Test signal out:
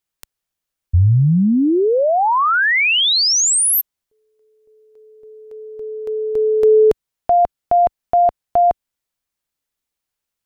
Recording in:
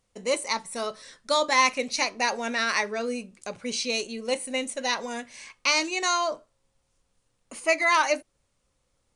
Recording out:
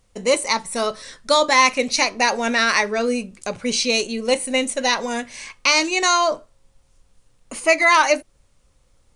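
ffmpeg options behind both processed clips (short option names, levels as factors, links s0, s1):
-filter_complex "[0:a]lowshelf=f=76:g=10.5,asplit=2[s0][s1];[s1]alimiter=limit=0.158:level=0:latency=1:release=244,volume=0.75[s2];[s0][s2]amix=inputs=2:normalize=0,volume=1.5"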